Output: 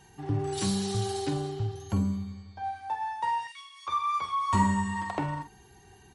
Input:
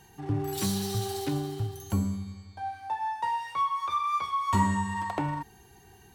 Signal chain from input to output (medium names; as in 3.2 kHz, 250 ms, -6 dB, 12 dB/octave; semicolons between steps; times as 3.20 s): 1.51–2.64 s: peaking EQ 8.9 kHz -13.5 dB 0.52 oct; 3.47–3.87 s: inverse Chebyshev high-pass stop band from 640 Hz, stop band 60 dB; doubling 46 ms -11 dB; MP3 48 kbps 48 kHz